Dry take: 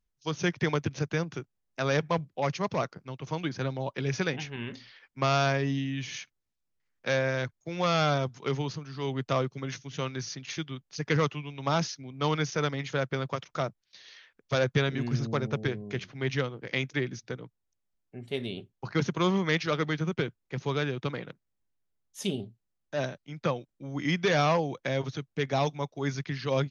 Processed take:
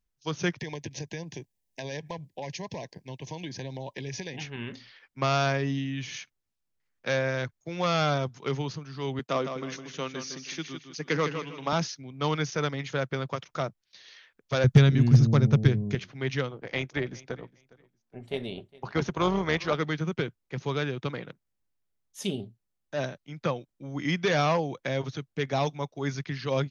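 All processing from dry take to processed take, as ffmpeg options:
ffmpeg -i in.wav -filter_complex "[0:a]asettb=1/sr,asplit=3[link_01][link_02][link_03];[link_01]atrim=end=0.594[link_04];[link_02]atrim=start=0.59:end=4.41,asetpts=PTS-STARTPTS,afade=type=in:duration=0.004:curve=qsin,afade=type=out:start_time=3.816:duration=0.004:curve=qsin,highshelf=frequency=5100:gain=9.5,acompressor=threshold=-33dB:ratio=4:attack=3.2:release=140:knee=1:detection=peak,asuperstop=centerf=1300:order=12:qfactor=2.3[link_05];[link_03]atrim=start=4.406[link_06];[link_04][link_05]acrossfade=duration=0.004:curve1=hsin:curve2=qsin[link_07];[link_07][link_06]acrossfade=duration=0.004:curve1=qsin:curve2=hsin,asettb=1/sr,asplit=3[link_08][link_09][link_10];[link_08]atrim=end=9.194[link_11];[link_09]atrim=start=9.19:end=11.73,asetpts=PTS-STARTPTS,afade=type=in:duration=0.004:curve=qsin,afade=type=out:start_time=2.536:duration=0.004:curve=qsin,highpass=frequency=170:width=0.5412,highpass=frequency=170:width=1.3066,agate=range=-12dB:threshold=-51dB:ratio=16:release=100:detection=peak,aecho=1:1:157|314|471:0.398|0.115|0.0335,atrim=end_sample=112014[link_12];[link_10]atrim=start=11.726[link_13];[link_11][link_12]acrossfade=duration=0.004:curve1=hsin:curve2=qsin[link_14];[link_14][link_13]acrossfade=duration=0.004:curve1=qsin:curve2=hsin,asettb=1/sr,asplit=3[link_15][link_16][link_17];[link_15]atrim=end=14.644[link_18];[link_16]atrim=start=14.64:end=15.95,asetpts=PTS-STARTPTS,afade=type=in:duration=0.004:curve=qsin,afade=type=out:start_time=1.306:duration=0.004:curve=qsin,bass=frequency=250:gain=14,treble=frequency=4000:gain=6,volume=9dB,asoftclip=hard,volume=-9dB[link_19];[link_17]atrim=start=15.946[link_20];[link_18][link_19]acrossfade=duration=0.004:curve1=hsin:curve2=qsin[link_21];[link_21][link_20]acrossfade=duration=0.004:curve1=qsin:curve2=hsin,asettb=1/sr,asplit=3[link_22][link_23][link_24];[link_22]atrim=end=16.514[link_25];[link_23]atrim=start=16.51:end=19.75,asetpts=PTS-STARTPTS,afade=type=in:duration=0.004:curve=qsin,afade=type=out:start_time=3.236:duration=0.004:curve=qsin,equalizer=frequency=760:width=0.9:gain=6.5,tremolo=f=230:d=0.462,aecho=1:1:410|820:0.0794|0.0167,atrim=end_sample=142884[link_26];[link_24]atrim=start=19.746[link_27];[link_25][link_26]acrossfade=duration=0.004:curve1=hsin:curve2=qsin[link_28];[link_28][link_27]acrossfade=duration=0.004:curve1=qsin:curve2=hsin" out.wav

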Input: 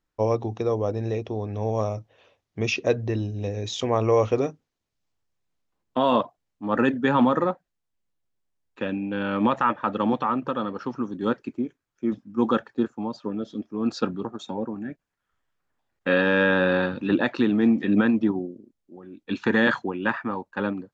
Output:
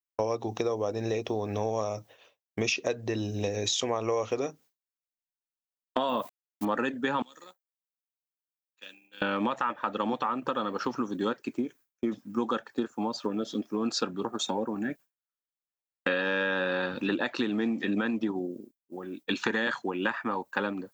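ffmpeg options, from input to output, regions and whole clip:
ffmpeg -i in.wav -filter_complex "[0:a]asettb=1/sr,asplit=3[link_01][link_02][link_03];[link_01]atrim=end=6.094[link_04];[link_02]atrim=start=6.09:end=6.65,asetpts=PTS-STARTPTS,afade=type=in:duration=0.004:curve=qsin,afade=type=out:start_time=0.556:duration=0.004:curve=qsin,bass=frequency=250:gain=5,treble=frequency=4000:gain=-5,aeval=exprs='val(0)*gte(abs(val(0)),0.00398)':channel_layout=same[link_05];[link_03]atrim=start=6.646[link_06];[link_04][link_05]acrossfade=duration=0.004:curve1=hsin:curve2=qsin[link_07];[link_07][link_06]acrossfade=duration=0.004:curve1=qsin:curve2=hsin,asettb=1/sr,asplit=3[link_08][link_09][link_10];[link_08]atrim=end=7.224[link_11];[link_09]atrim=start=7.22:end=9.22,asetpts=PTS-STARTPTS,afade=type=in:duration=0.004:curve=qsin,afade=type=out:start_time=1.996:duration=0.004:curve=qsin,aderivative,acrossover=split=370|3000[link_12][link_13][link_14];[link_13]acompressor=threshold=-53dB:ratio=5:attack=3.2:release=140:knee=2.83:detection=peak[link_15];[link_12][link_15][link_14]amix=inputs=3:normalize=0,tremolo=f=70:d=0.462[link_16];[link_10]atrim=start=9.216[link_17];[link_11][link_16]acrossfade=duration=0.004:curve1=hsin:curve2=qsin[link_18];[link_18][link_17]acrossfade=duration=0.004:curve1=qsin:curve2=hsin,aemphasis=mode=production:type=bsi,agate=range=-33dB:threshold=-48dB:ratio=3:detection=peak,acompressor=threshold=-34dB:ratio=6,volume=7.5dB" out.wav

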